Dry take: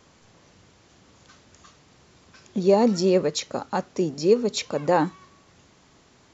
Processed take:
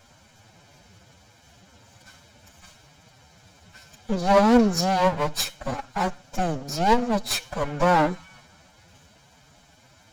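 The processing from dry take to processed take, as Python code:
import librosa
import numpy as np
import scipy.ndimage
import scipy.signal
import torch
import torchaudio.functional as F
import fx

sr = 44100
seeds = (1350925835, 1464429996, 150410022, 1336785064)

y = fx.lower_of_two(x, sr, delay_ms=1.3)
y = fx.stretch_vocoder(y, sr, factor=1.6)
y = y * 10.0 ** (4.0 / 20.0)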